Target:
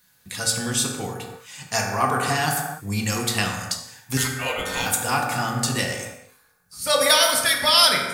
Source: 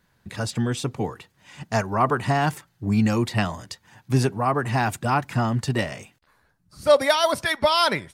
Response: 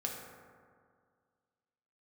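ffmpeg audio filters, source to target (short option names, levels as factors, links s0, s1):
-filter_complex "[0:a]crystalizer=i=9:c=0,asettb=1/sr,asplit=3[s0][s1][s2];[s0]atrim=end=4.174[s3];[s1]atrim=start=4.17:end=4.86,asetpts=PTS-STARTPTS,afade=t=in:d=0.004:c=qsin,afade=t=out:st=0.686:d=0.004:c=qsin,aeval=exprs='val(0)*sin(2*PI*1700*n/s)':c=same[s4];[s2]atrim=start=4.856[s5];[s3][s4]acrossfade=d=0.004:c1=hsin:c2=qsin[s6];[s6][s5]acrossfade=d=0.004:c1=qsin:c2=hsin[s7];[1:a]atrim=start_sample=2205,afade=t=out:st=0.37:d=0.01,atrim=end_sample=16758[s8];[s7][s8]afir=irnorm=-1:irlink=0,volume=0.501"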